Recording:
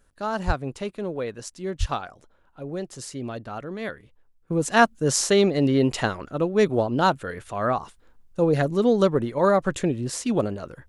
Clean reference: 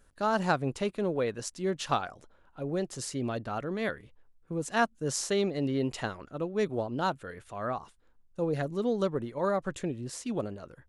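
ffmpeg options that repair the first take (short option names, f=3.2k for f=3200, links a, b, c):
-filter_complex "[0:a]asplit=3[a][b][c];[a]afade=t=out:st=0.46:d=0.02[d];[b]highpass=f=140:w=0.5412,highpass=f=140:w=1.3066,afade=t=in:st=0.46:d=0.02,afade=t=out:st=0.58:d=0.02[e];[c]afade=t=in:st=0.58:d=0.02[f];[d][e][f]amix=inputs=3:normalize=0,asplit=3[g][h][i];[g]afade=t=out:st=1.79:d=0.02[j];[h]highpass=f=140:w=0.5412,highpass=f=140:w=1.3066,afade=t=in:st=1.79:d=0.02,afade=t=out:st=1.91:d=0.02[k];[i]afade=t=in:st=1.91:d=0.02[l];[j][k][l]amix=inputs=3:normalize=0,asetnsamples=n=441:p=0,asendcmd='4.5 volume volume -9.5dB',volume=0dB"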